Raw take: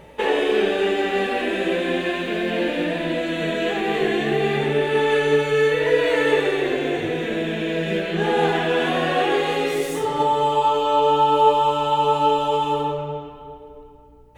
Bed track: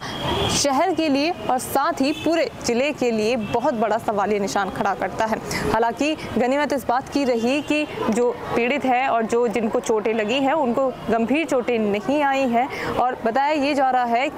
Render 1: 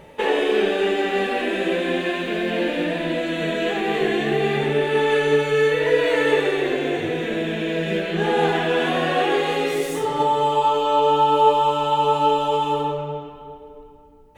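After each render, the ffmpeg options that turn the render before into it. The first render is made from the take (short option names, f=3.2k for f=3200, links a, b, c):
-af "bandreject=f=60:t=h:w=4,bandreject=f=120:t=h:w=4"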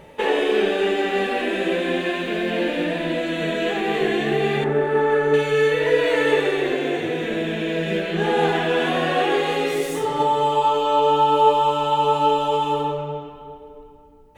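-filter_complex "[0:a]asettb=1/sr,asplit=3[a][b][c];[a]atrim=end=4.644[d];[b]atrim=start=4.64:end=5.34,asetpts=PTS-STARTPTS,afade=t=in:d=0.004:c=qsin,afade=t=out:st=0.696:d=0.004:c=qsin,highshelf=f=2k:t=q:w=1.5:g=-10.5[e];[c]atrim=start=5.336[f];[d][e]acrossfade=d=0.004:c1=hsin:c2=qsin[g];[g][f]acrossfade=d=0.004:c1=qsin:c2=hsin,asettb=1/sr,asplit=3[h][i][j];[h]atrim=end=6.754[k];[i]atrim=start=6.75:end=7.22,asetpts=PTS-STARTPTS,afade=t=in:d=0.004:c=qsin,afade=t=out:st=0.466:d=0.004:c=qsin,highpass=130[l];[j]atrim=start=7.216[m];[k][l]acrossfade=d=0.004:c1=hsin:c2=qsin[n];[n][m]acrossfade=d=0.004:c1=qsin:c2=hsin"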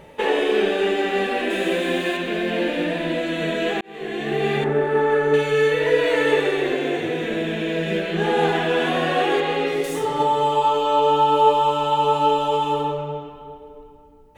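-filter_complex "[0:a]asettb=1/sr,asplit=3[a][b][c];[a]atrim=end=1.504[d];[b]atrim=start=1.5:end=2.17,asetpts=PTS-STARTPTS,afade=t=in:d=0.004:c=qsin,afade=t=out:st=0.666:d=0.004:c=qsin,highshelf=f=6.4k:g=10.5[e];[c]atrim=start=2.166[f];[d][e]acrossfade=d=0.004:c1=hsin:c2=qsin[g];[g][f]acrossfade=d=0.004:c1=qsin:c2=hsin,asettb=1/sr,asplit=3[h][i][j];[h]atrim=end=9.404[k];[i]atrim=start=9.4:end=9.84,asetpts=PTS-STARTPTS,afade=t=in:d=0.004:c=qsin,afade=t=out:st=0.436:d=0.004:c=qsin,acrossover=split=4500[l][m];[m]acompressor=threshold=-52dB:ratio=4:attack=1:release=60[n];[l][n]amix=inputs=2:normalize=0[o];[j]atrim=start=9.836[p];[k][o]acrossfade=d=0.004:c1=hsin:c2=qsin[q];[q][p]acrossfade=d=0.004:c1=qsin:c2=hsin,asplit=2[r][s];[r]atrim=end=3.81,asetpts=PTS-STARTPTS,afade=t=out:st=3.806:d=0.004:c=hsin[t];[s]atrim=start=3.81,asetpts=PTS-STARTPTS,afade=t=in:d=0.69[u];[t][u]concat=n=2:v=0:a=1"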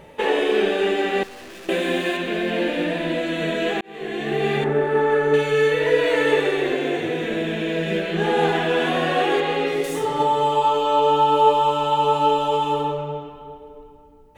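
-filter_complex "[0:a]asettb=1/sr,asplit=3[a][b][c];[a]atrim=end=1.234[d];[b]atrim=start=1.23:end=1.69,asetpts=PTS-STARTPTS,afade=t=in:d=0.004:c=qsin,afade=t=out:st=0.456:d=0.004:c=qsin,aeval=exprs='(tanh(89.1*val(0)+0.3)-tanh(0.3))/89.1':c=same[e];[c]atrim=start=1.686[f];[d][e]acrossfade=d=0.004:c1=hsin:c2=qsin[g];[g][f]acrossfade=d=0.004:c1=qsin:c2=hsin"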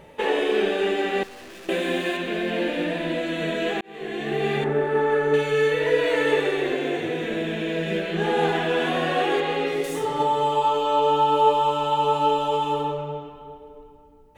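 -af "volume=-2.5dB"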